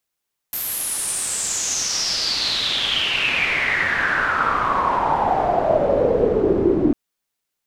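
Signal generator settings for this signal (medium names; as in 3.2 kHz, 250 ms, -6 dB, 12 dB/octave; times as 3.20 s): swept filtered noise white, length 6.40 s lowpass, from 13 kHz, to 310 Hz, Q 6.9, exponential, gain ramp +23.5 dB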